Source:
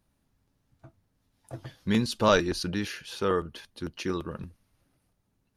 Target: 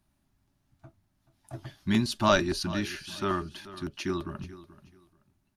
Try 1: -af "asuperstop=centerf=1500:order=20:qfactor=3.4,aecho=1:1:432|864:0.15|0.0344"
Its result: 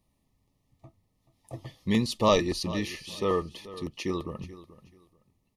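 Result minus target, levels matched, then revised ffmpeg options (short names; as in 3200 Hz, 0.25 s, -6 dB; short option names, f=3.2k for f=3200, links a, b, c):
2000 Hz band -5.0 dB
-af "asuperstop=centerf=480:order=20:qfactor=3.4,aecho=1:1:432|864:0.15|0.0344"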